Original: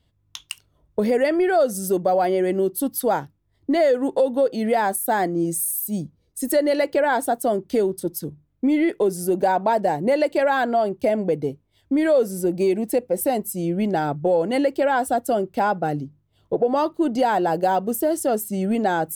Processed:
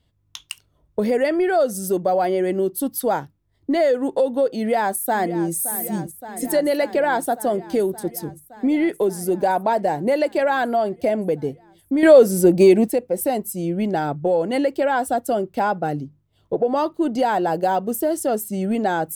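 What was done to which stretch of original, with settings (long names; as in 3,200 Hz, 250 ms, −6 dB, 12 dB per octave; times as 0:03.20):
0:04.57–0:05.54: delay throw 570 ms, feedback 80%, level −13 dB
0:12.03–0:12.88: clip gain +8 dB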